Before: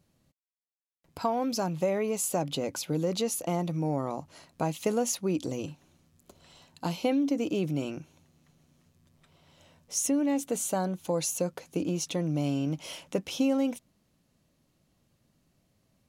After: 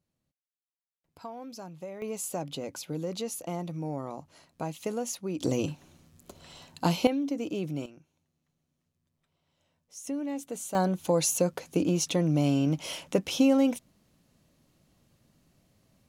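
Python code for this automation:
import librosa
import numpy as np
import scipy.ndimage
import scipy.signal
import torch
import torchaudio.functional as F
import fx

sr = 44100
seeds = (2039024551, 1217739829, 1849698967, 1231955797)

y = fx.gain(x, sr, db=fx.steps((0.0, -13.0), (2.02, -5.0), (5.41, 6.0), (7.07, -3.5), (7.86, -15.0), (10.07, -6.5), (10.75, 4.0)))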